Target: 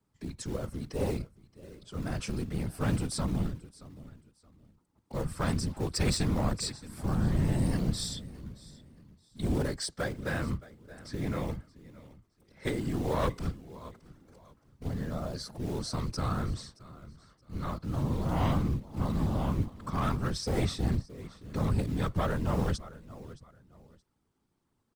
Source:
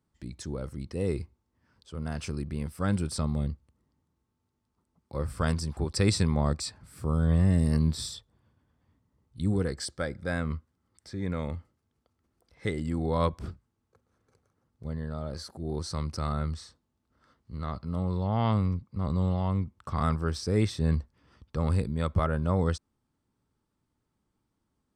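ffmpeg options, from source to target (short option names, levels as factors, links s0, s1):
-filter_complex "[0:a]acrossover=split=170|770|2600[s0][s1][s2][s3];[s1]acrusher=bits=3:mode=log:mix=0:aa=0.000001[s4];[s0][s4][s2][s3]amix=inputs=4:normalize=0,asettb=1/sr,asplit=3[s5][s6][s7];[s5]atrim=end=13.384[s8];[s6]atrim=start=13.38:end=14.88,asetpts=PTS-STARTPTS,afade=t=in:d=0.004:c=qsin,afade=t=out:st=1.496:d=0.004:c=qsin,acontrast=27[s9];[s7]atrim=start=14.876[s10];[s8][s9]acrossfade=d=0.004:c1=hsin:c2=qsin[s11];[s11][s10]acrossfade=d=0.004:c1=qsin:c2=hsin,aecho=1:1:622|1244:0.0944|0.0255,asoftclip=type=tanh:threshold=0.0668,afftfilt=real='hypot(re,im)*cos(2*PI*random(0))':imag='hypot(re,im)*sin(2*PI*random(1))':win_size=512:overlap=0.75,volume=2.24"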